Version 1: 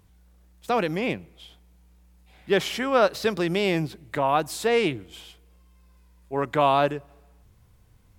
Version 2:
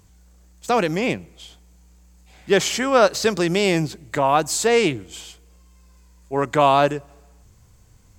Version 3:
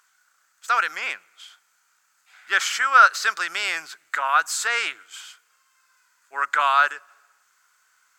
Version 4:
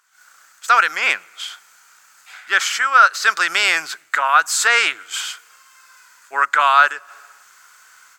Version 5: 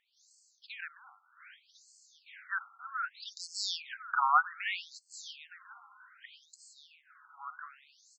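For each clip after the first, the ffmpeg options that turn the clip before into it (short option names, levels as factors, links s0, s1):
-af "superequalizer=14b=1.78:15b=3.16,volume=1.68"
-af "highpass=f=1400:t=q:w=6,volume=0.668"
-af "dynaudnorm=f=110:g=3:m=6.31,volume=0.891"
-af "tremolo=f=0.51:d=0.89,aecho=1:1:1052|2104|3156:0.251|0.0829|0.0274,afftfilt=real='re*between(b*sr/1024,980*pow(6000/980,0.5+0.5*sin(2*PI*0.64*pts/sr))/1.41,980*pow(6000/980,0.5+0.5*sin(2*PI*0.64*pts/sr))*1.41)':imag='im*between(b*sr/1024,980*pow(6000/980,0.5+0.5*sin(2*PI*0.64*pts/sr))/1.41,980*pow(6000/980,0.5+0.5*sin(2*PI*0.64*pts/sr))*1.41)':win_size=1024:overlap=0.75,volume=0.473"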